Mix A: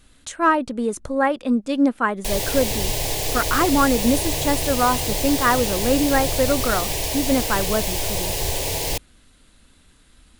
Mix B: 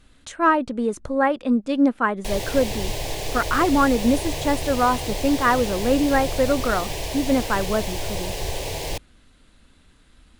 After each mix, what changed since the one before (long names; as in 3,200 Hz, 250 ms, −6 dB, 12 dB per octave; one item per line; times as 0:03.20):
background: send −6.5 dB
master: add low-pass filter 4,000 Hz 6 dB per octave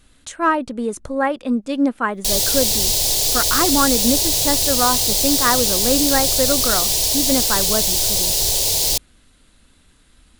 background: add high shelf with overshoot 3,100 Hz +10.5 dB, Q 1.5
master: remove low-pass filter 4,000 Hz 6 dB per octave